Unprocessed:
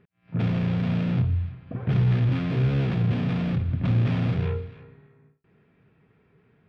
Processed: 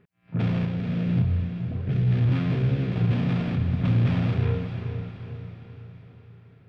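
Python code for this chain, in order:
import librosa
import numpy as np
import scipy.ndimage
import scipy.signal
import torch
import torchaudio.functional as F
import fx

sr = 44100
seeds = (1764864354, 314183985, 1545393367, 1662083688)

y = fx.rotary(x, sr, hz=1.0, at=(0.65, 2.96))
y = fx.echo_diffused(y, sr, ms=463, feedback_pct=49, wet_db=-8.0)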